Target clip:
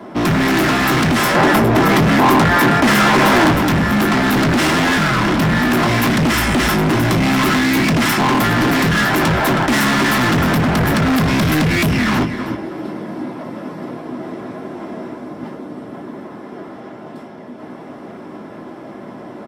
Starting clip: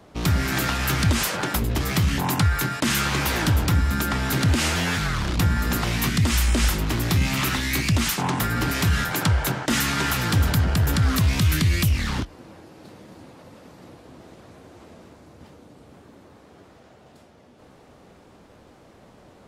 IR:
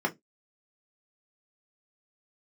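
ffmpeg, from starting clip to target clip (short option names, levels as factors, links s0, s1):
-filter_complex "[0:a]aecho=1:1:318|636|954:0.211|0.0465|0.0102[s0];[1:a]atrim=start_sample=2205[s1];[s0][s1]afir=irnorm=-1:irlink=0,volume=8.91,asoftclip=hard,volume=0.112,asettb=1/sr,asplit=3[s2][s3][s4];[s2]atrim=end=1.354[s5];[s3]atrim=start=1.35:end=3.52,asetpts=PTS-STARTPTS,afade=t=in:d=0.004:c=qsin,afade=t=out:st=2.166:d=0.004:c=qsin,equalizer=f=670:t=o:w=2.8:g=5[s6];[s4]atrim=start=3.516[s7];[s5][s6]acrossfade=d=0.004:c1=hsin:c2=qsin[s8];[s8][s7]acrossfade=d=0.004:c1=qsin:c2=hsin,volume=2"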